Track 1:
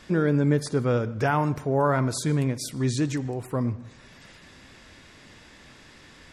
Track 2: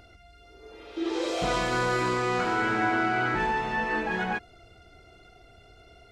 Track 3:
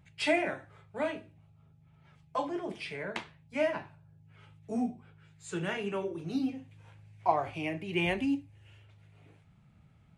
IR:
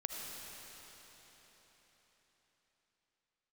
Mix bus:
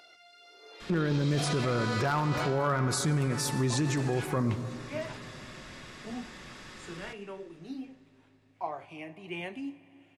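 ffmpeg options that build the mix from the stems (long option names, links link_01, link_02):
-filter_complex "[0:a]equalizer=frequency=1200:width=5.8:gain=7,aecho=1:1:5.5:0.31,adynamicequalizer=threshold=0.0141:dfrequency=670:dqfactor=1.2:tfrequency=670:tqfactor=1.2:attack=5:release=100:ratio=0.375:range=3.5:mode=cutabove:tftype=bell,adelay=800,volume=0.5dB,asplit=2[link_01][link_02];[link_02]volume=-10.5dB[link_03];[1:a]highpass=540,equalizer=frequency=4300:width_type=o:width=1.1:gain=8,alimiter=limit=-22.5dB:level=0:latency=1:release=307,volume=-1.5dB,afade=type=out:start_time=2.44:duration=0.46:silence=0.398107[link_04];[2:a]highpass=160,adelay=1350,volume=-9dB,asplit=2[link_05][link_06];[link_06]volume=-16dB[link_07];[3:a]atrim=start_sample=2205[link_08];[link_03][link_07]amix=inputs=2:normalize=0[link_09];[link_09][link_08]afir=irnorm=-1:irlink=0[link_10];[link_01][link_04][link_05][link_10]amix=inputs=4:normalize=0,aeval=exprs='0.251*(abs(mod(val(0)/0.251+3,4)-2)-1)':channel_layout=same,alimiter=limit=-20.5dB:level=0:latency=1:release=26"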